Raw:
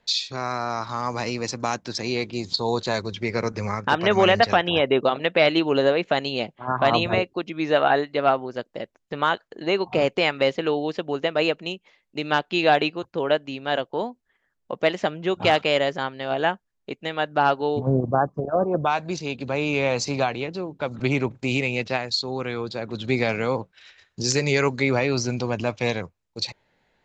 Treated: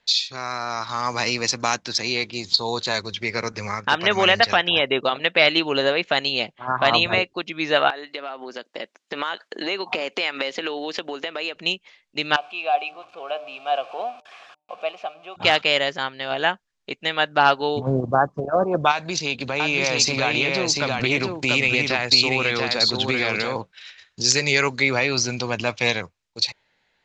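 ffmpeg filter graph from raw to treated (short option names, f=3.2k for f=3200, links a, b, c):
-filter_complex "[0:a]asettb=1/sr,asplit=3[a][b][c];[a]atrim=end=7.904[d];[b]atrim=start=7.9:end=11.56,asetpts=PTS-STARTPTS,afade=t=in:d=0.004:c=qsin,afade=t=out:st=3.656:d=0.004:c=qsin,highpass=f=210:w=0.5412,highpass=f=210:w=1.3066,acompressor=threshold=-30dB:ratio=12:attack=3.2:release=140:knee=1:detection=peak[e];[c]atrim=start=11.556[f];[d][e]acrossfade=d=0.004:c1=hsin:c2=qsin[g];[g][f]acrossfade=d=0.004:c1=qsin:c2=hsin,asettb=1/sr,asplit=3[h][i][j];[h]atrim=end=12.364[k];[i]atrim=start=12.36:end=15.36,asetpts=PTS-STARTPTS,afade=t=in:d=0.004:c=qsin,afade=t=out:st=2.996:d=0.004:c=qsin,aeval=exprs='val(0)+0.5*0.0251*sgn(val(0))':c=same,asplit=3[l][m][n];[l]bandpass=f=730:t=q:w=8,volume=0dB[o];[m]bandpass=f=1.09k:t=q:w=8,volume=-6dB[p];[n]bandpass=f=2.44k:t=q:w=8,volume=-9dB[q];[o][p][q]amix=inputs=3:normalize=0,bandreject=f=150.7:t=h:w=4,bandreject=f=301.4:t=h:w=4,bandreject=f=452.1:t=h:w=4,bandreject=f=602.8:t=h:w=4,bandreject=f=753.5:t=h:w=4,bandreject=f=904.2:t=h:w=4[r];[j]atrim=start=15.356[s];[k][r]acrossfade=d=0.004:c1=hsin:c2=qsin[t];[t][s]acrossfade=d=0.004:c1=qsin:c2=hsin,asettb=1/sr,asplit=3[u][v][w];[u]atrim=end=18.914[x];[v]atrim=start=18.91:end=23.56,asetpts=PTS-STARTPTS,afade=t=in:d=0.004:c=qsin,afade=t=out:st=4.646:d=0.004:c=qsin,acompressor=threshold=-25dB:ratio=4:attack=3.2:release=140:knee=1:detection=peak,aecho=1:1:688:0.668,atrim=end_sample=205065[y];[w]atrim=start=23.556[z];[x][y]acrossfade=d=0.004:c1=hsin:c2=qsin[aa];[aa][z]acrossfade=d=0.004:c1=qsin:c2=hsin,lowpass=6.7k,tiltshelf=f=1.2k:g=-6.5,dynaudnorm=f=220:g=9:m=11.5dB,volume=-1dB"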